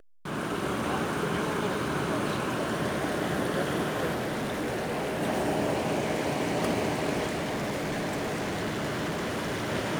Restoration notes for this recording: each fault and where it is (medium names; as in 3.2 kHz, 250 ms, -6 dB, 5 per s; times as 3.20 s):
4.14–5.23 s: clipped -27.5 dBFS
7.28–9.70 s: clipped -27.5 dBFS